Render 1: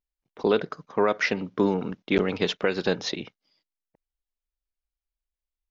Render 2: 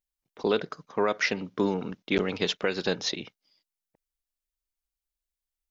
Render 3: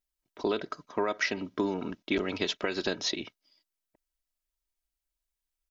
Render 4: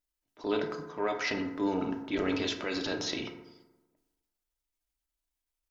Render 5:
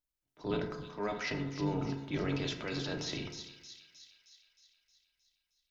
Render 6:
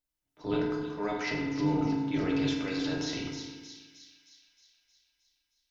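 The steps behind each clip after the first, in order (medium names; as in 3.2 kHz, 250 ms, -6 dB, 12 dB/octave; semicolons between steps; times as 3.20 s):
treble shelf 3.7 kHz +8.5 dB; trim -3.5 dB
comb 3.1 ms, depth 47%; compression 3:1, threshold -26 dBFS, peak gain reduction 5.5 dB
transient shaper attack -8 dB, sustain +6 dB; FDN reverb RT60 1.1 s, low-frequency decay 1×, high-frequency decay 0.4×, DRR 3.5 dB; trim -2 dB
octave divider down 1 oct, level +1 dB; feedback echo behind a high-pass 312 ms, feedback 59%, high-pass 3.9 kHz, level -4.5 dB; trim -5 dB
FDN reverb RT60 0.89 s, low-frequency decay 1.3×, high-frequency decay 0.8×, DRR 5.5 dB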